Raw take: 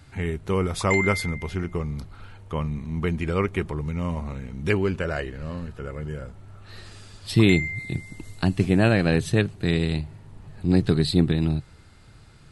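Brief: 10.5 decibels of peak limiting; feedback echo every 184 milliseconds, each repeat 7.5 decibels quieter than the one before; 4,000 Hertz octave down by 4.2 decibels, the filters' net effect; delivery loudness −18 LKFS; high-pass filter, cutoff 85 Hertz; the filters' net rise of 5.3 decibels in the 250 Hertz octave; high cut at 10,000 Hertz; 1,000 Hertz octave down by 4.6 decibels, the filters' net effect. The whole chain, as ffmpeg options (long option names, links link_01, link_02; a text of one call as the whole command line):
ffmpeg -i in.wav -af "highpass=85,lowpass=10000,equalizer=frequency=250:width_type=o:gain=8,equalizer=frequency=1000:width_type=o:gain=-6.5,equalizer=frequency=4000:width_type=o:gain=-4.5,alimiter=limit=-13dB:level=0:latency=1,aecho=1:1:184|368|552|736|920:0.422|0.177|0.0744|0.0312|0.0131,volume=7.5dB" out.wav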